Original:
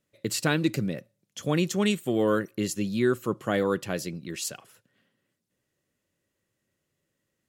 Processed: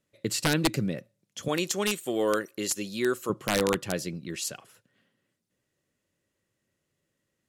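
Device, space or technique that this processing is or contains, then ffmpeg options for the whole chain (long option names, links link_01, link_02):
overflowing digital effects unit: -filter_complex "[0:a]asettb=1/sr,asplit=3[link_01][link_02][link_03];[link_01]atrim=end=1.484[link_04];[link_02]atrim=start=1.48:end=3.3,asetpts=PTS-STARTPTS,afade=type=in:duration=0.004:curve=qsin,afade=type=out:start_time=1.816:duration=0.004:curve=qsin,bass=frequency=250:gain=-13,treble=frequency=4000:gain=6[link_05];[link_03]atrim=start=3.296[link_06];[link_04][link_05]acrossfade=duration=0.004:curve1=hsin:curve2=qsin[link_07];[link_07][link_06]acrossfade=duration=0.004:curve1=qsin:curve2=hsin,aeval=exprs='(mod(5.62*val(0)+1,2)-1)/5.62':channel_layout=same,lowpass=13000"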